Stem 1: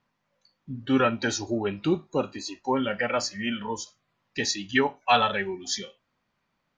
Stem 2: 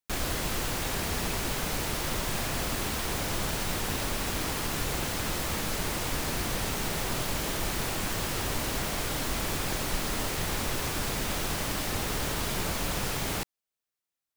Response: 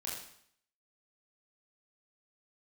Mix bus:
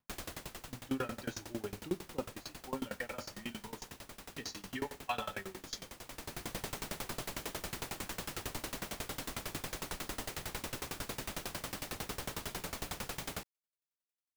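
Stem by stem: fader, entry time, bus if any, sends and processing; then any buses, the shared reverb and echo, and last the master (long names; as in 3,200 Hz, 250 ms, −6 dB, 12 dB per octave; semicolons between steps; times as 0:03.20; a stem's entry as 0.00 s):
−11.0 dB, 0.00 s, send −7.5 dB, low-shelf EQ 140 Hz +10.5 dB
−3.0 dB, 0.00 s, no send, automatic ducking −9 dB, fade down 0.80 s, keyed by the first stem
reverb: on, RT60 0.65 s, pre-delay 23 ms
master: low-shelf EQ 100 Hz −5.5 dB; tremolo with a ramp in dB decaying 11 Hz, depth 23 dB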